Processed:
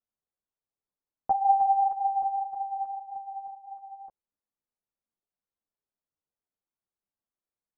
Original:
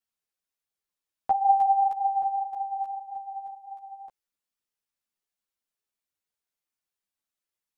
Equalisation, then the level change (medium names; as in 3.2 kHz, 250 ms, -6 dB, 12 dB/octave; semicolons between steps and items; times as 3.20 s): low-pass 1.1 kHz 12 dB/octave; distance through air 460 m; +1.5 dB